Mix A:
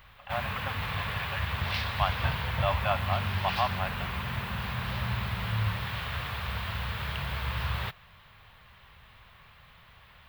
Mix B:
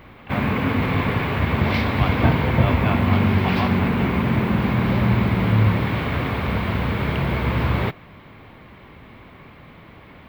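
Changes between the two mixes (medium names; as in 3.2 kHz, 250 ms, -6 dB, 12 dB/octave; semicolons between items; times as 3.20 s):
background: remove amplifier tone stack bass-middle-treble 10-0-10; master: add peaking EQ 2.2 kHz +9 dB 0.21 oct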